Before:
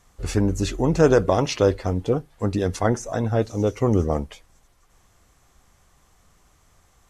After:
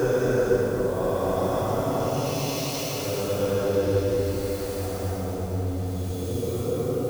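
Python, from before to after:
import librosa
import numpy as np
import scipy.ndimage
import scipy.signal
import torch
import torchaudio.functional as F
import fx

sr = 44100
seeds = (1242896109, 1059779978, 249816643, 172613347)

p1 = x + 0.5 * 10.0 ** (-22.0 / 20.0) * np.diff(np.sign(x), prepend=np.sign(x[:1]))
p2 = fx.paulstretch(p1, sr, seeds[0], factor=6.7, window_s=0.25, from_s=1.11)
p3 = p2 + fx.echo_opening(p2, sr, ms=249, hz=400, octaves=1, feedback_pct=70, wet_db=-3, dry=0)
y = F.gain(torch.from_numpy(p3), -7.5).numpy()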